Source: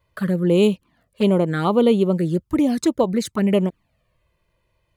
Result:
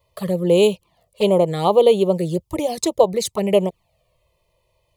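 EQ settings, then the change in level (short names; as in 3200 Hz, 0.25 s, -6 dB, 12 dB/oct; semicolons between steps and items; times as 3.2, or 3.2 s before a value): low shelf 140 Hz -7.5 dB; fixed phaser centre 630 Hz, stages 4; +7.0 dB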